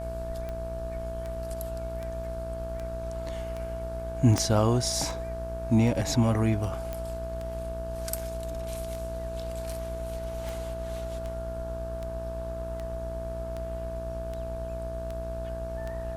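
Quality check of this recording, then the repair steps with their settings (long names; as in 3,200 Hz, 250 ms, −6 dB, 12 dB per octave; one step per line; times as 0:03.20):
mains buzz 60 Hz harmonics 29 −37 dBFS
scratch tick 78 rpm −24 dBFS
whistle 660 Hz −35 dBFS
0:04.38: click −11 dBFS
0:06.93: click −20 dBFS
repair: click removal
hum removal 60 Hz, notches 29
notch filter 660 Hz, Q 30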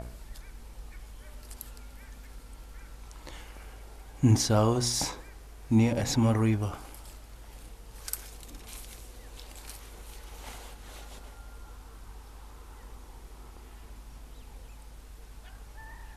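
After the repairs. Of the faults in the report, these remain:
0:04.38: click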